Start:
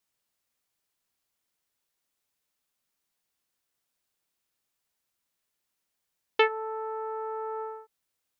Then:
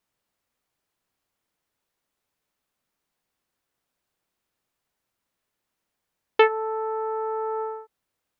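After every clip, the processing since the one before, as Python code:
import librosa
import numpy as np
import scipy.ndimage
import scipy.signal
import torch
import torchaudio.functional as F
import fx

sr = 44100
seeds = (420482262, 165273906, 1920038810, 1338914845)

y = fx.high_shelf(x, sr, hz=2500.0, db=-10.0)
y = y * 10.0 ** (7.0 / 20.0)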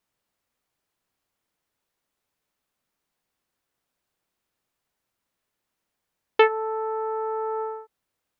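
y = x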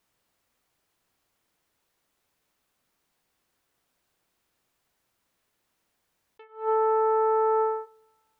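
y = fx.rev_double_slope(x, sr, seeds[0], early_s=0.48, late_s=2.0, knee_db=-21, drr_db=17.0)
y = fx.attack_slew(y, sr, db_per_s=170.0)
y = y * 10.0 ** (5.5 / 20.0)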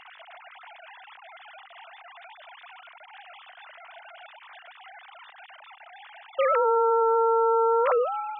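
y = fx.sine_speech(x, sr)
y = fx.env_flatten(y, sr, amount_pct=100)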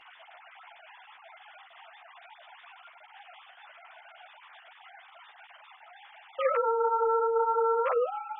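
y = fx.ensemble(x, sr)
y = y * 10.0 ** (-1.5 / 20.0)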